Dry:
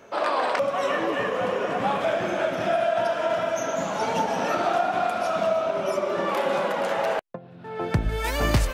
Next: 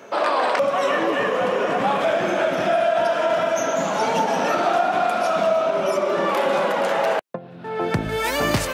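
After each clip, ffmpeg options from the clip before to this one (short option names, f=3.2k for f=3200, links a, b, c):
-filter_complex "[0:a]highpass=150,asplit=2[a][b];[b]alimiter=limit=-22dB:level=0:latency=1,volume=1.5dB[c];[a][c]amix=inputs=2:normalize=0"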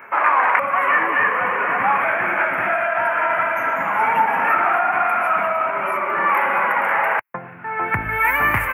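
-af "firequalizer=gain_entry='entry(100,0);entry(150,-8);entry(610,-9);entry(890,5);entry(2200,10);entry(3800,-29);entry(6000,-28);entry(12000,3)':delay=0.05:min_phase=1,areverse,acompressor=mode=upward:threshold=-24dB:ratio=2.5,areverse,volume=1dB"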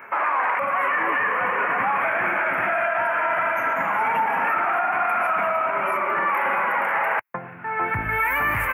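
-af "alimiter=limit=-13dB:level=0:latency=1:release=22,volume=-1dB"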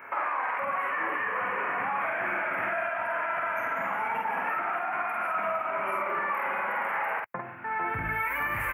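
-filter_complex "[0:a]acompressor=threshold=-24dB:ratio=6,asplit=2[a][b];[b]adelay=49,volume=-2.5dB[c];[a][c]amix=inputs=2:normalize=0,volume=-4.5dB"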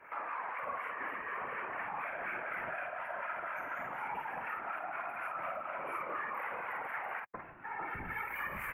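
-filter_complex "[0:a]afftfilt=real='hypot(re,im)*cos(2*PI*random(0))':imag='hypot(re,im)*sin(2*PI*random(1))':win_size=512:overlap=0.75,acrossover=split=990[a][b];[a]aeval=exprs='val(0)*(1-0.5/2+0.5/2*cos(2*PI*4.1*n/s))':c=same[c];[b]aeval=exprs='val(0)*(1-0.5/2-0.5/2*cos(2*PI*4.1*n/s))':c=same[d];[c][d]amix=inputs=2:normalize=0,volume=-1.5dB"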